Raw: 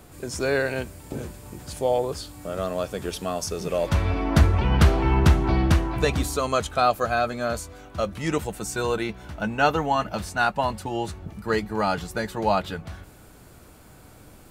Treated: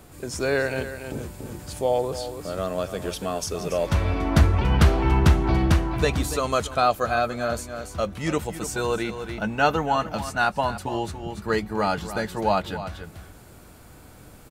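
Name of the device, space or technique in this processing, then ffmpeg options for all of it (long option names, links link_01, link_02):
ducked delay: -filter_complex "[0:a]asplit=3[link_01][link_02][link_03];[link_02]adelay=285,volume=-5dB[link_04];[link_03]apad=whole_len=652081[link_05];[link_04][link_05]sidechaincompress=threshold=-28dB:ratio=8:attack=9:release=635[link_06];[link_01][link_06]amix=inputs=2:normalize=0"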